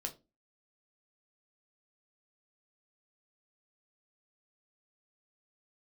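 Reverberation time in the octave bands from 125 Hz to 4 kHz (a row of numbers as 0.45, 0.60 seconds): 0.30, 0.40, 0.30, 0.20, 0.20, 0.20 seconds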